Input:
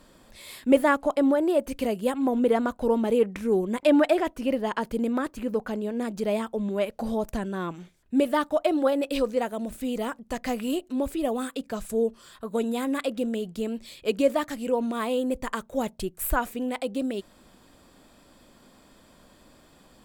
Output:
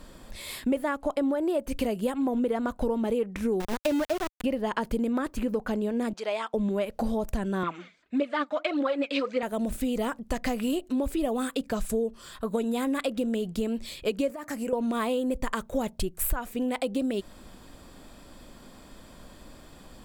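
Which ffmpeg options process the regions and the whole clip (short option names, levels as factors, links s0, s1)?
-filter_complex "[0:a]asettb=1/sr,asplit=3[s0][s1][s2];[s0]atrim=end=3.604[s3];[s1]atrim=start=3.6:end=4.44,asetpts=PTS-STARTPTS,afade=t=in:d=0.004:c=qsin,afade=t=out:st=0.836:d=0.004:c=qsin,highshelf=f=2900:g=-9.5,aeval=exprs='val(0)*gte(abs(val(0)),0.0562)':c=same[s4];[s2]atrim=start=4.436[s5];[s3][s4]acrossfade=d=0.004:c1=hsin:c2=qsin[s6];[s6][s5]acrossfade=d=0.004:c1=qsin:c2=hsin,asettb=1/sr,asplit=3[s7][s8][s9];[s7]atrim=end=6.134[s10];[s8]atrim=start=6.13:end=6.54,asetpts=PTS-STARTPTS,afade=t=in:d=0.004:c=qsin,afade=t=out:st=0.406:d=0.004:c=qsin,highpass=790,lowpass=5400,bandreject=f=1800:w=25[s11];[s9]atrim=start=6.536[s12];[s10][s11]acrossfade=d=0.004:c1=hsin:c2=qsin[s13];[s13][s12]acrossfade=d=0.004:c1=qsin:c2=hsin,asettb=1/sr,asplit=3[s14][s15][s16];[s14]atrim=end=7.634[s17];[s15]atrim=start=7.63:end=9.43,asetpts=PTS-STARTPTS,afade=t=in:d=0.004:c=qsin,afade=t=out:st=1.796:d=0.004:c=qsin,aphaser=in_gain=1:out_gain=1:delay=5:decay=0.59:speed=1.7:type=triangular,highpass=290,equalizer=f=400:t=q:w=4:g=-8,equalizer=f=810:t=q:w=4:g=-6,equalizer=f=1300:t=q:w=4:g=4,equalizer=f=2200:t=q:w=4:g=6,equalizer=f=5600:t=q:w=4:g=-6,lowpass=f=5900:w=0.5412,lowpass=f=5900:w=1.3066[s18];[s16]atrim=start=9.426[s19];[s17][s18]acrossfade=d=0.004:c1=hsin:c2=qsin[s20];[s20][s19]acrossfade=d=0.004:c1=qsin:c2=hsin,asettb=1/sr,asplit=3[s21][s22][s23];[s21]atrim=end=14.304[s24];[s22]atrim=start=14.3:end=14.73,asetpts=PTS-STARTPTS,afade=t=in:d=0.004:c=qsin,afade=t=out:st=0.426:d=0.004:c=qsin,highpass=f=250:p=1,equalizer=f=3500:t=o:w=0.57:g=-13,acompressor=threshold=0.0251:ratio=6:attack=3.2:release=140:knee=1:detection=peak[s25];[s23]atrim=start=14.726[s26];[s24][s25]acrossfade=d=0.004:c1=hsin:c2=qsin[s27];[s27][s26]acrossfade=d=0.004:c1=qsin:c2=hsin,lowshelf=f=77:g=9.5,acompressor=threshold=0.0355:ratio=6,volume=1.68"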